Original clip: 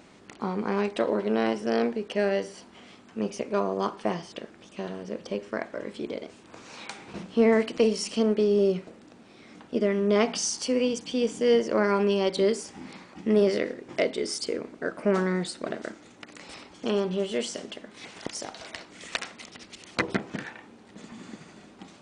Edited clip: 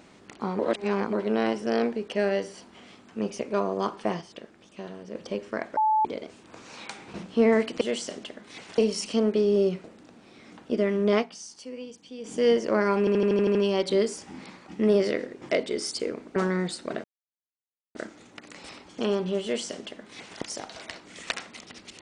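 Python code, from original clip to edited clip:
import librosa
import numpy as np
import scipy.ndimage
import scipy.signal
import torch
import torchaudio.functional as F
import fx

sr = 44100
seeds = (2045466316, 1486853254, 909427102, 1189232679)

y = fx.edit(x, sr, fx.reverse_span(start_s=0.59, length_s=0.54),
    fx.clip_gain(start_s=4.21, length_s=0.94, db=-4.5),
    fx.bleep(start_s=5.77, length_s=0.28, hz=867.0, db=-19.0),
    fx.fade_down_up(start_s=10.17, length_s=1.21, db=-14.0, fade_s=0.12, curve='qsin'),
    fx.stutter(start_s=12.02, slice_s=0.08, count=8),
    fx.cut(start_s=14.83, length_s=0.29),
    fx.insert_silence(at_s=15.8, length_s=0.91),
    fx.duplicate(start_s=17.28, length_s=0.97, to_s=7.81), tone=tone)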